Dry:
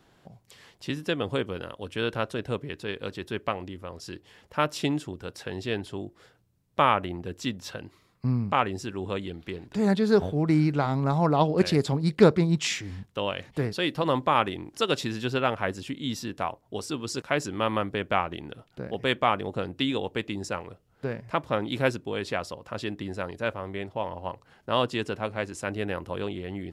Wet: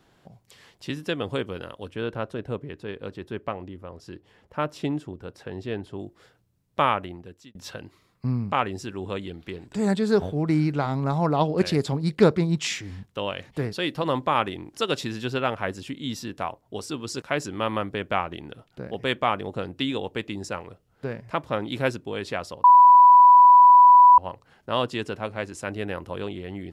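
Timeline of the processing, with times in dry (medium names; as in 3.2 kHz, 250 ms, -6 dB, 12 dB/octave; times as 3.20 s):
1.90–5.99 s: treble shelf 2 kHz -10.5 dB
6.85–7.55 s: fade out
9.60–10.12 s: peaking EQ 7.9 kHz +12.5 dB 0.2 oct
22.64–24.18 s: bleep 988 Hz -8.5 dBFS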